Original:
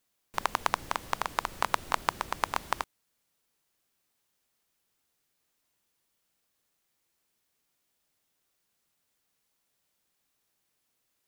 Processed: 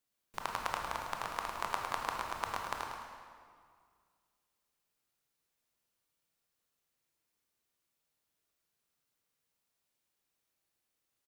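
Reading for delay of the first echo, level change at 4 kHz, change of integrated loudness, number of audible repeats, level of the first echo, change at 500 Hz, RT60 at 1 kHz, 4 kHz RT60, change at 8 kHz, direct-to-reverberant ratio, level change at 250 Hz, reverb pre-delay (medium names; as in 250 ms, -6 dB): 106 ms, -6.5 dB, -6.0 dB, 1, -7.0 dB, -5.5 dB, 2.0 s, 1.5 s, -6.5 dB, 0.0 dB, -6.0 dB, 20 ms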